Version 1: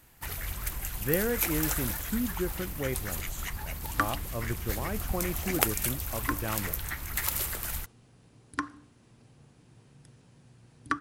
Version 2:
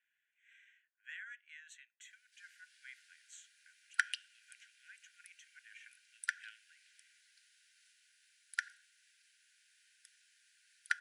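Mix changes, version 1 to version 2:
speech -9.5 dB; first sound: muted; master: add brick-wall FIR high-pass 1.4 kHz

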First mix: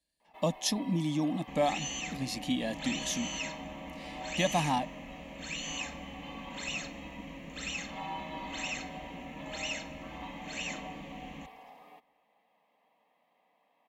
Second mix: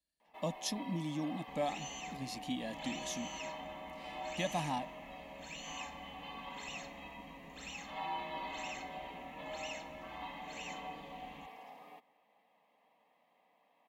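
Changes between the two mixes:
speech -7.5 dB; second sound -9.5 dB

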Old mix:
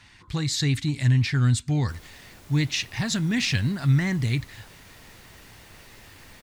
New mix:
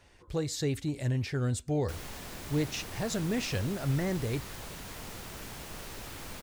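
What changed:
speech: add graphic EQ 125/250/500/1000/2000/4000/8000 Hz -10/-7/+12/-7/-9/-10/-5 dB; background +7.5 dB

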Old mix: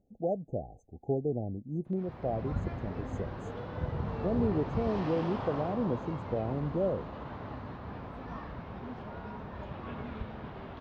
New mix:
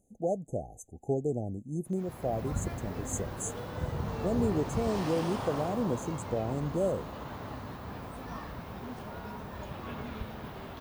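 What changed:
speech: add treble shelf 5.4 kHz +11 dB; master: remove distance through air 250 m

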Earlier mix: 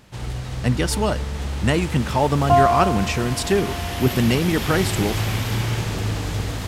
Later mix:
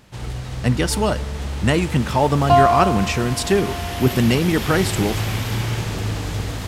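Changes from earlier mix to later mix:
speech: send +7.0 dB; second sound: remove distance through air 480 m

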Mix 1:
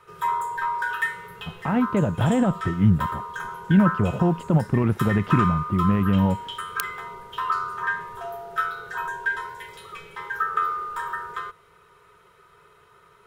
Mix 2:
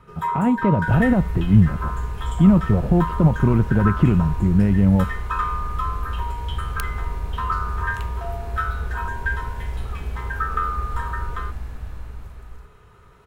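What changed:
speech: entry -1.30 s; second sound: unmuted; master: add tilt EQ -1.5 dB/octave

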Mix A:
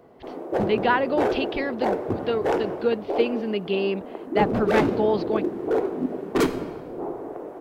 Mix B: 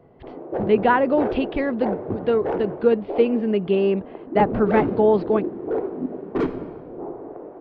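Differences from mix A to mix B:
speech +7.0 dB; master: add tape spacing loss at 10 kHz 38 dB

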